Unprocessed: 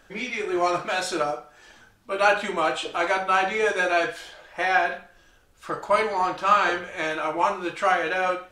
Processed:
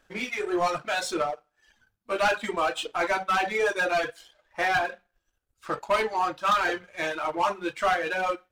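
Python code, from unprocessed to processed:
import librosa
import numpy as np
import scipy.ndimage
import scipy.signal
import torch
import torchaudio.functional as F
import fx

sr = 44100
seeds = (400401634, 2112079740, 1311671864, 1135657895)

y = 10.0 ** (-20.5 / 20.0) * np.tanh(x / 10.0 ** (-20.5 / 20.0))
y = fx.dereverb_blind(y, sr, rt60_s=1.4)
y = fx.power_curve(y, sr, exponent=1.4)
y = y * 10.0 ** (4.0 / 20.0)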